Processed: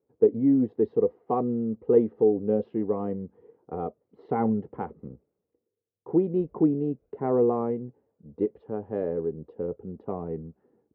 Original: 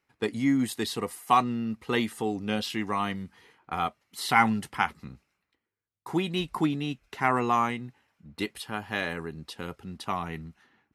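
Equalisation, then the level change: high-pass 70 Hz; resonant low-pass 470 Hz, resonance Q 4.9; distance through air 120 m; 0.0 dB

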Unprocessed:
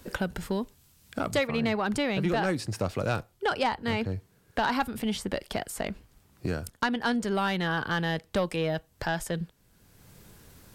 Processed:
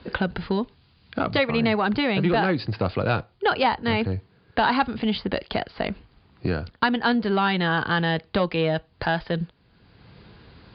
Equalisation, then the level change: high-pass 41 Hz; Chebyshev low-pass 4.8 kHz, order 8; band-stop 580 Hz, Q 17; +6.5 dB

